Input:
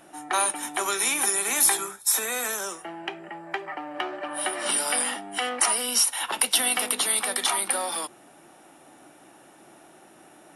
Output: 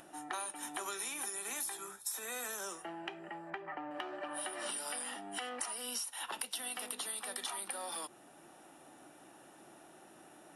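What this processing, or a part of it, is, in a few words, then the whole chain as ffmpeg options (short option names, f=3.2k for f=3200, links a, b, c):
upward and downward compression: -filter_complex "[0:a]acompressor=mode=upward:threshold=-47dB:ratio=2.5,acompressor=threshold=-31dB:ratio=6,asettb=1/sr,asplit=3[a][b][c];[a]atrim=end=3.504[d];[b]atrim=start=3.5:end=3.91,asetpts=PTS-STARTPTS,afade=t=in:d=0.004:c=qsin,afade=t=out:st=0.406:d=0.004:c=qsin,bass=f=250:g=4,treble=f=4k:g=-14[e];[c]atrim=start=3.906[f];[d][e]acrossfade=d=0.004:c1=hsin:c2=qsin[g];[g][f]acrossfade=d=0.004:c1=qsin:c2=hsin,bandreject=f=2.2k:w=14,volume=-6.5dB"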